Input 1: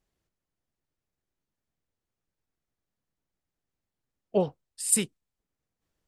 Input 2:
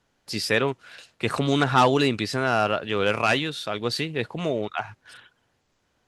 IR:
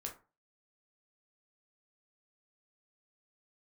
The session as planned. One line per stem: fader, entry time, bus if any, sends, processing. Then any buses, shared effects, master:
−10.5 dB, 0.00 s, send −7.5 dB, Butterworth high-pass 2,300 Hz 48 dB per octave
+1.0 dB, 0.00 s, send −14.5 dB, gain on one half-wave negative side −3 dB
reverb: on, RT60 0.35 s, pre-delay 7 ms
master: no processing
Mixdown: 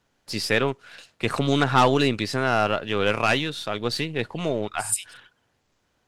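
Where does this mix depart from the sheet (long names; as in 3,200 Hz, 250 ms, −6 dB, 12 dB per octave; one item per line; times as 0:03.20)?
stem 1 −10.5 dB → −2.5 dB
reverb return −9.5 dB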